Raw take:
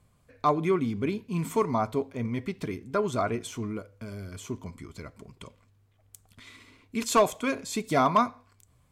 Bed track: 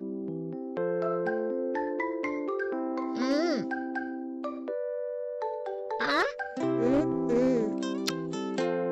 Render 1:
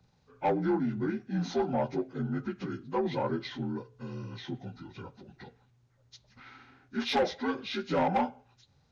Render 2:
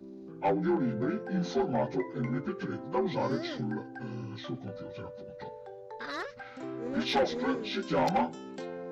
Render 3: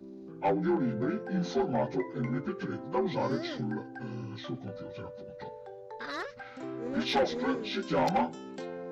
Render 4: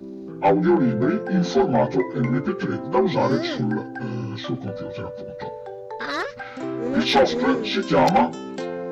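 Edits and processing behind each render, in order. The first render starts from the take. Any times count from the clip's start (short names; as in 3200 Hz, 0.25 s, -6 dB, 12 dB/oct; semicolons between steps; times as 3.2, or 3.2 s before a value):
inharmonic rescaling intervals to 80%; soft clip -20.5 dBFS, distortion -13 dB
add bed track -11 dB
nothing audible
gain +10.5 dB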